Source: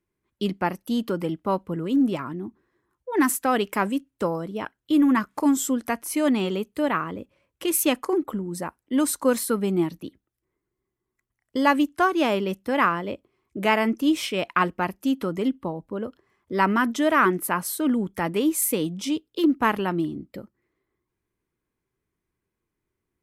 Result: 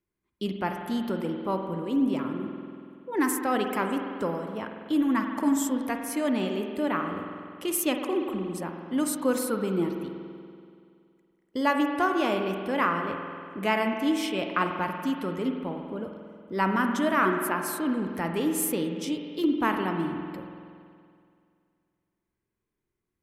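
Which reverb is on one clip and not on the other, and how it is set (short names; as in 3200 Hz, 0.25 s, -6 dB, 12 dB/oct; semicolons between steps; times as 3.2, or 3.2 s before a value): spring tank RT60 2.3 s, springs 47 ms, chirp 70 ms, DRR 4 dB; gain -5 dB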